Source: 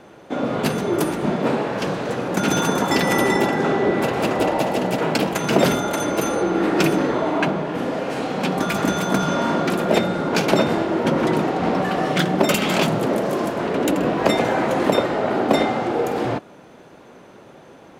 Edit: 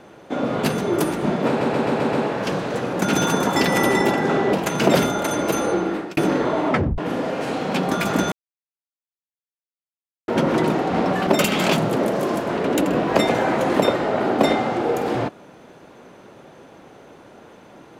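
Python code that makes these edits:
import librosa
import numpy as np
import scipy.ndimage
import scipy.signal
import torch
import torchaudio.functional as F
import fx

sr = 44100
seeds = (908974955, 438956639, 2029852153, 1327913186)

y = fx.edit(x, sr, fx.stutter(start_s=1.48, slice_s=0.13, count=6),
    fx.cut(start_s=3.88, length_s=1.34),
    fx.fade_out_span(start_s=6.44, length_s=0.42),
    fx.tape_stop(start_s=7.38, length_s=0.29),
    fx.silence(start_s=9.01, length_s=1.96),
    fx.cut(start_s=11.96, length_s=0.41), tone=tone)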